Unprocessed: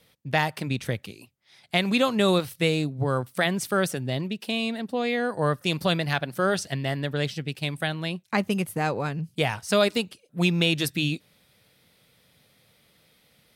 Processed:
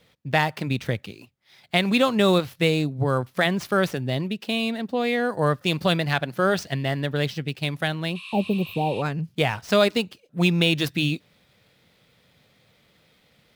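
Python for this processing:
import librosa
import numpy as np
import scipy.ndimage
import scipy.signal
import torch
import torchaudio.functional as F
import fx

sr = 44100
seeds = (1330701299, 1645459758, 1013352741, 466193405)

y = scipy.ndimage.median_filter(x, 5, mode='constant')
y = fx.spec_repair(y, sr, seeds[0], start_s=8.18, length_s=0.81, low_hz=970.0, high_hz=12000.0, source='before')
y = F.gain(torch.from_numpy(y), 2.5).numpy()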